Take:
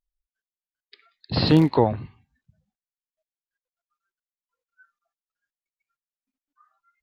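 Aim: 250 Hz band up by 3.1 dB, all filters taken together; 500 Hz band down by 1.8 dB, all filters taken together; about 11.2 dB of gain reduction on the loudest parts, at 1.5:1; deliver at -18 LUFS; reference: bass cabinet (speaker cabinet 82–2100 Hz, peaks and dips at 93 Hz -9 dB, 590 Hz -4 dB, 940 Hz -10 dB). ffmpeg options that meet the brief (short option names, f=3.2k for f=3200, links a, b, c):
-af "equalizer=f=250:t=o:g=6.5,equalizer=f=500:t=o:g=-3.5,acompressor=threshold=-41dB:ratio=1.5,highpass=f=82:w=0.5412,highpass=f=82:w=1.3066,equalizer=f=93:t=q:w=4:g=-9,equalizer=f=590:t=q:w=4:g=-4,equalizer=f=940:t=q:w=4:g=-10,lowpass=f=2.1k:w=0.5412,lowpass=f=2.1k:w=1.3066,volume=12.5dB"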